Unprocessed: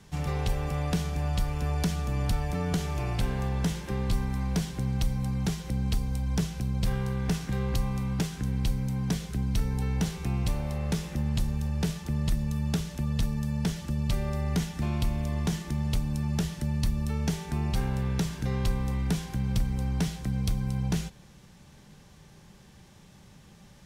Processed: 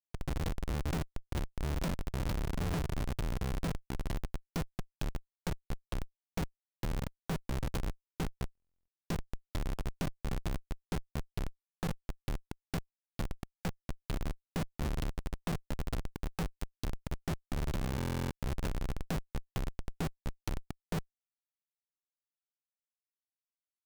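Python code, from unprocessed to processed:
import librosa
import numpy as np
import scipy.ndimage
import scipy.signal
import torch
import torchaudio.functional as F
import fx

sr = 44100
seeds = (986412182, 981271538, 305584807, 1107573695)

y = fx.low_shelf(x, sr, hz=170.0, db=-12.0)
y = fx.schmitt(y, sr, flips_db=-28.5)
y = fx.buffer_glitch(y, sr, at_s=(8.53, 17.96), block=1024, repeats=14)
y = y * 10.0 ** (3.5 / 20.0)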